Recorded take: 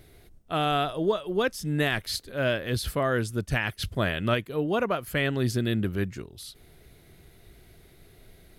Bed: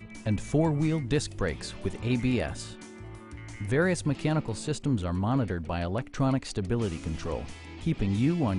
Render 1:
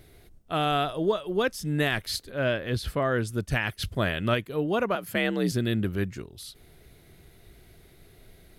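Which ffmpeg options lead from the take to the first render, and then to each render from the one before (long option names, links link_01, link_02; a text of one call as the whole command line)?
ffmpeg -i in.wav -filter_complex "[0:a]asettb=1/sr,asplit=3[link_01][link_02][link_03];[link_01]atrim=end=2.304[link_04];[link_02]atrim=start=2.3:end=3.27,asetpts=PTS-STARTPTS,afade=type=in:duration=0.004:curve=qsin,afade=type=out:start_time=0.966:duration=0.004:curve=qsin,highshelf=frequency=5800:gain=-9.5[link_05];[link_03]atrim=start=3.266[link_06];[link_04][link_05]acrossfade=duration=0.004:curve1=hsin:curve2=qsin[link_07];[link_07][link_06]acrossfade=duration=0.004:curve1=qsin:curve2=hsin,asettb=1/sr,asplit=3[link_08][link_09][link_10];[link_08]atrim=end=4.954[link_11];[link_09]atrim=start=4.95:end=5.52,asetpts=PTS-STARTPTS,afade=type=in:duration=0.004:curve=qsin,afade=type=out:start_time=0.566:duration=0.004:curve=qsin,afreqshift=57[link_12];[link_10]atrim=start=5.516[link_13];[link_11][link_12]acrossfade=duration=0.004:curve1=hsin:curve2=qsin[link_14];[link_14][link_13]acrossfade=duration=0.004:curve1=qsin:curve2=hsin" out.wav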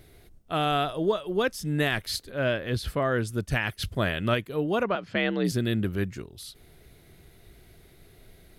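ffmpeg -i in.wav -filter_complex "[0:a]asettb=1/sr,asplit=3[link_01][link_02][link_03];[link_01]atrim=end=4.834[link_04];[link_02]atrim=start=4.83:end=5.45,asetpts=PTS-STARTPTS,afade=type=in:duration=0.004:curve=qsin,afade=type=out:start_time=0.616:duration=0.004:curve=qsin,lowpass=frequency=5100:width=0.5412,lowpass=frequency=5100:width=1.3066[link_05];[link_03]atrim=start=5.446[link_06];[link_04][link_05]acrossfade=duration=0.004:curve1=hsin:curve2=qsin[link_07];[link_07][link_06]acrossfade=duration=0.004:curve1=qsin:curve2=hsin" out.wav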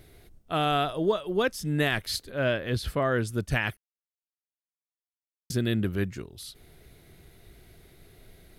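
ffmpeg -i in.wav -filter_complex "[0:a]asplit=3[link_01][link_02][link_03];[link_01]atrim=end=3.77,asetpts=PTS-STARTPTS,afade=type=out:start_time=3.766:duration=0.004:curve=hsin[link_04];[link_02]atrim=start=3.77:end=5.5,asetpts=PTS-STARTPTS,volume=0[link_05];[link_03]atrim=start=5.5,asetpts=PTS-STARTPTS,afade=type=in:duration=0.004:curve=hsin[link_06];[link_04][link_05][link_06]concat=n=3:v=0:a=1" out.wav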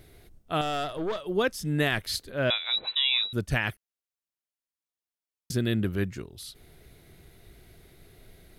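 ffmpeg -i in.wav -filter_complex "[0:a]asettb=1/sr,asplit=3[link_01][link_02][link_03];[link_01]atrim=end=0.614[link_04];[link_02]atrim=start=0.61:end=1.26,asetpts=PTS-STARTPTS,afade=type=in:duration=0.004:curve=qsin,afade=type=out:start_time=0.646:duration=0.004:curve=qsin,aeval=exprs='(tanh(20*val(0)+0.45)-tanh(0.45))/20':channel_layout=same[link_05];[link_03]atrim=start=1.256[link_06];[link_04][link_05]acrossfade=duration=0.004:curve1=hsin:curve2=qsin[link_07];[link_07][link_06]acrossfade=duration=0.004:curve1=qsin:curve2=hsin,asettb=1/sr,asplit=3[link_08][link_09][link_10];[link_08]atrim=end=2.504[link_11];[link_09]atrim=start=2.5:end=3.33,asetpts=PTS-STARTPTS,afade=type=in:duration=0.004:curve=qsin,afade=type=out:start_time=0.826:duration=0.004:curve=qsin,lowpass=frequency=3400:width_type=q:width=0.5098,lowpass=frequency=3400:width_type=q:width=0.6013,lowpass=frequency=3400:width_type=q:width=0.9,lowpass=frequency=3400:width_type=q:width=2.563,afreqshift=-4000[link_12];[link_10]atrim=start=3.326[link_13];[link_11][link_12]acrossfade=duration=0.004:curve1=hsin:curve2=qsin[link_14];[link_14][link_13]acrossfade=duration=0.004:curve1=qsin:curve2=hsin" out.wav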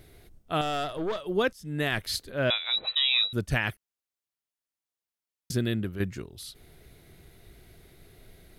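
ffmpeg -i in.wav -filter_complex "[0:a]asettb=1/sr,asplit=3[link_01][link_02][link_03];[link_01]atrim=end=2.844[link_04];[link_02]atrim=start=2.84:end=3.28,asetpts=PTS-STARTPTS,afade=type=in:duration=0.004:curve=qsin,afade=type=out:start_time=0.436:duration=0.004:curve=qsin,aecho=1:1:1.6:0.65,atrim=end_sample=19404[link_05];[link_03]atrim=start=3.276[link_06];[link_04][link_05]acrossfade=duration=0.004:curve1=hsin:curve2=qsin[link_07];[link_07][link_06]acrossfade=duration=0.004:curve1=qsin:curve2=hsin,asplit=3[link_08][link_09][link_10];[link_08]atrim=end=1.53,asetpts=PTS-STARTPTS,afade=type=out:start_time=1.526:duration=0.004:curve=hsin:silence=0.141254[link_11];[link_09]atrim=start=1.53:end=6,asetpts=PTS-STARTPTS,afade=type=in:duration=0.47:silence=0.141254,afade=type=out:start_time=4.05:duration=0.42:silence=0.398107[link_12];[link_10]atrim=start=6,asetpts=PTS-STARTPTS,afade=type=in:duration=0.004:curve=hsin:silence=0.398107[link_13];[link_11][link_12][link_13]concat=n=3:v=0:a=1" out.wav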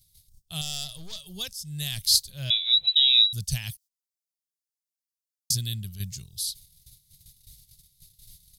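ffmpeg -i in.wav -af "agate=range=-15dB:threshold=-51dB:ratio=16:detection=peak,firequalizer=gain_entry='entry(150,0);entry(280,-26);entry(780,-18);entry(1400,-22);entry(3300,4);entry(4800,14)':delay=0.05:min_phase=1" out.wav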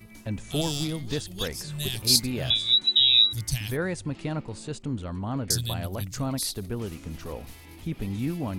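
ffmpeg -i in.wav -i bed.wav -filter_complex "[1:a]volume=-4dB[link_01];[0:a][link_01]amix=inputs=2:normalize=0" out.wav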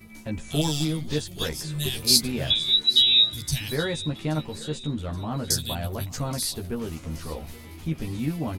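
ffmpeg -i in.wav -filter_complex "[0:a]asplit=2[link_01][link_02];[link_02]adelay=13,volume=-3dB[link_03];[link_01][link_03]amix=inputs=2:normalize=0,aecho=1:1:826|1652|2478|3304:0.112|0.0527|0.0248|0.0116" out.wav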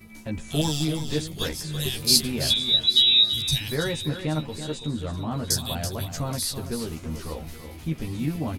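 ffmpeg -i in.wav -af "aecho=1:1:332:0.316" out.wav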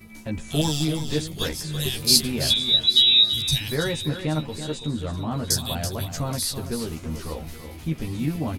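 ffmpeg -i in.wav -af "volume=1.5dB" out.wav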